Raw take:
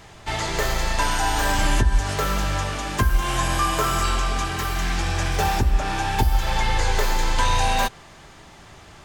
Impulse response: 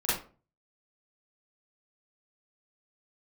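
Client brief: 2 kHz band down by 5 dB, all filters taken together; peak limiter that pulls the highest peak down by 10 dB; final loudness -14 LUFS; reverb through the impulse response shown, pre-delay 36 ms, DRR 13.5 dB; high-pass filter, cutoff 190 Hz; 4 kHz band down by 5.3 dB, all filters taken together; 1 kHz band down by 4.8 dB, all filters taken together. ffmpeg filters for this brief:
-filter_complex "[0:a]highpass=190,equalizer=f=1000:t=o:g=-5,equalizer=f=2000:t=o:g=-3.5,equalizer=f=4000:t=o:g=-5.5,alimiter=limit=0.0708:level=0:latency=1,asplit=2[s0][s1];[1:a]atrim=start_sample=2205,adelay=36[s2];[s1][s2]afir=irnorm=-1:irlink=0,volume=0.0708[s3];[s0][s3]amix=inputs=2:normalize=0,volume=7.5"

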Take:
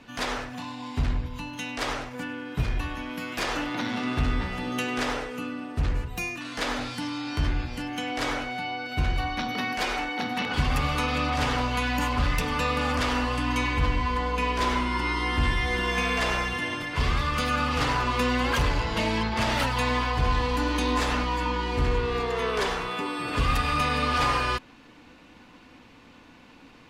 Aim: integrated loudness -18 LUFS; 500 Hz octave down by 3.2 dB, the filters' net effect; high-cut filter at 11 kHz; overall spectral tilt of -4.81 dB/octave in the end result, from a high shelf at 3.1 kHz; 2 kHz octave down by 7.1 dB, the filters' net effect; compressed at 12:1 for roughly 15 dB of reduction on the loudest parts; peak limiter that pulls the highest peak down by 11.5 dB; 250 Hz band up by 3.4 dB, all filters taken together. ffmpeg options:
-af "lowpass=11000,equalizer=f=250:t=o:g=5,equalizer=f=500:t=o:g=-4.5,equalizer=f=2000:t=o:g=-7.5,highshelf=f=3100:g=-4.5,acompressor=threshold=0.0178:ratio=12,volume=21.1,alimiter=limit=0.335:level=0:latency=1"

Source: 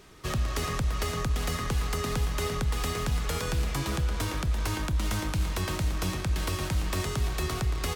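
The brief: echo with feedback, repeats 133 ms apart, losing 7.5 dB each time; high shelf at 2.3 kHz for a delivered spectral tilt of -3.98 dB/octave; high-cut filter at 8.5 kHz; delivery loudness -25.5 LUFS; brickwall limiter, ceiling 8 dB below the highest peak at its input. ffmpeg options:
-af "lowpass=8500,highshelf=f=2300:g=6,alimiter=limit=0.0631:level=0:latency=1,aecho=1:1:133|266|399|532|665:0.422|0.177|0.0744|0.0312|0.0131,volume=2"

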